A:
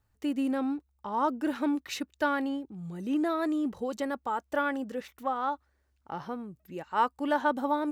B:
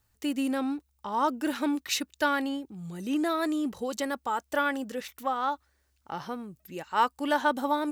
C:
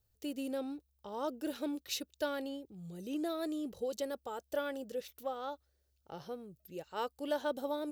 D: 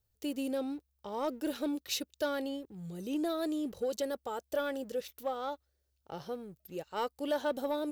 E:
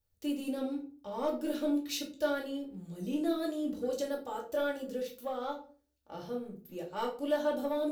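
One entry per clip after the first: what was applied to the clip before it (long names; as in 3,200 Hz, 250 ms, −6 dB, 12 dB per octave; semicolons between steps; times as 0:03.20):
high-shelf EQ 2,400 Hz +11 dB
octave-band graphic EQ 250/500/1,000/2,000/8,000 Hz −8/+6/−12/−10/−6 dB; level −4 dB
leveller curve on the samples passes 1
rectangular room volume 280 cubic metres, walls furnished, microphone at 2.4 metres; level −5 dB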